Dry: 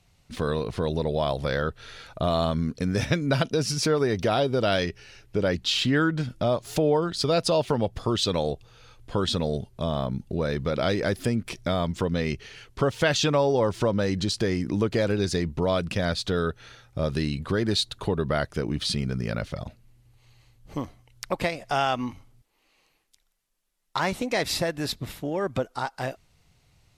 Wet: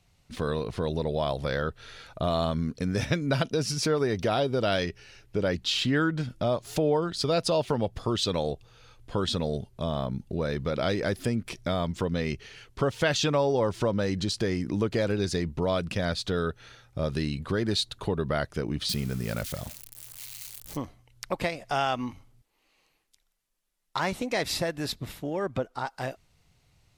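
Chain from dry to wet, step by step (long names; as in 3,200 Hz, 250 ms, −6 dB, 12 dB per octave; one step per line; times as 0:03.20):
0:18.89–0:20.77: spike at every zero crossing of −27.5 dBFS
0:25.46–0:25.86: high-shelf EQ 4,900 Hz −8 dB
level −2.5 dB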